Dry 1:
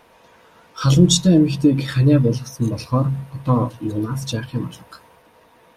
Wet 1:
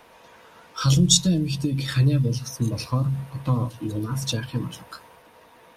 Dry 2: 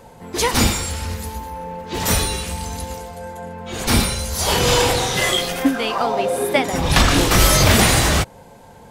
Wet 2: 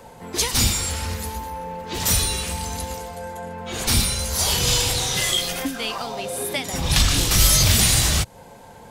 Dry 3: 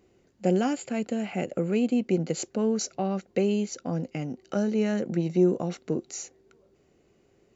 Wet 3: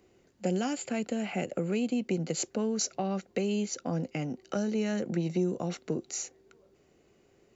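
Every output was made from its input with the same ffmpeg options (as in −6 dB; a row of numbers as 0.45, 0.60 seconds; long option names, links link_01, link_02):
-filter_complex "[0:a]lowshelf=frequency=460:gain=-3.5,acrossover=split=170|3000[link_01][link_02][link_03];[link_02]acompressor=threshold=-30dB:ratio=6[link_04];[link_01][link_04][link_03]amix=inputs=3:normalize=0,volume=1.5dB"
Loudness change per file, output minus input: −4.5, −2.5, −4.0 LU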